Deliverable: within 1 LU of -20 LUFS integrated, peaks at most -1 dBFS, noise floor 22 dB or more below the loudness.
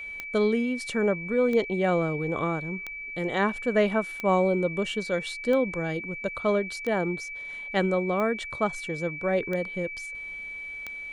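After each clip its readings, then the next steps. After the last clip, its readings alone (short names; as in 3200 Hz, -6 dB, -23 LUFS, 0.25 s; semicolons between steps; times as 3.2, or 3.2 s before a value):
clicks 9; steady tone 2300 Hz; tone level -35 dBFS; loudness -27.5 LUFS; peak -11.0 dBFS; loudness target -20.0 LUFS
-> de-click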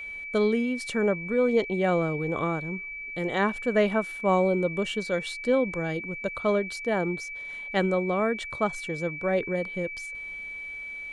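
clicks 0; steady tone 2300 Hz; tone level -35 dBFS
-> notch 2300 Hz, Q 30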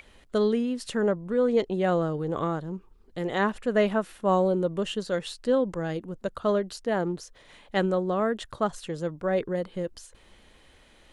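steady tone none; loudness -27.5 LUFS; peak -10.5 dBFS; loudness target -20.0 LUFS
-> gain +7.5 dB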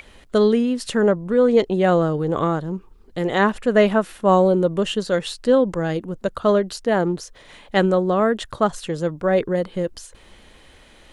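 loudness -20.0 LUFS; peak -3.0 dBFS; noise floor -49 dBFS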